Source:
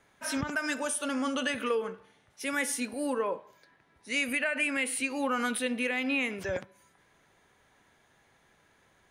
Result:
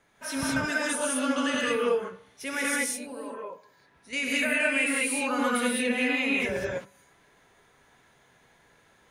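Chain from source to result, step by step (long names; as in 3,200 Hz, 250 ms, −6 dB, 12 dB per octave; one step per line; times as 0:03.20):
0:02.76–0:04.13: downward compressor 1.5 to 1, threshold −58 dBFS, peak gain reduction 11.5 dB
reverb whose tail is shaped and stops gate 230 ms rising, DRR −4.5 dB
level −1.5 dB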